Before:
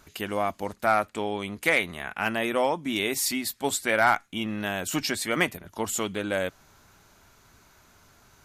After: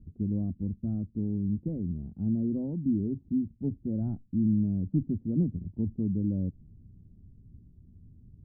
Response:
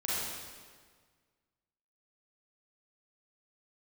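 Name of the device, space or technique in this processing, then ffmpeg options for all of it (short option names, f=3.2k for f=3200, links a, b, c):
the neighbour's flat through the wall: -filter_complex "[0:a]asettb=1/sr,asplit=3[a][b][c];[a]atrim=end=0.514[d];[b]atrim=start=0.51:end=1.52,asetpts=PTS-STARTPTS,afade=t=in:d=0.004:c=qsin,afade=t=out:st=1.006:d=0.004:c=qsin,equalizer=f=740:t=o:w=1.4:g=-5[e];[c]atrim=start=1.516[f];[d][e]acrossfade=d=0.004:c1=hsin:c2=qsin[g];[g][f]acrossfade=d=0.004:c1=qsin:c2=hsin,lowpass=f=230:w=0.5412,lowpass=f=230:w=1.3066,equalizer=f=88:t=o:w=0.77:g=3,volume=9dB"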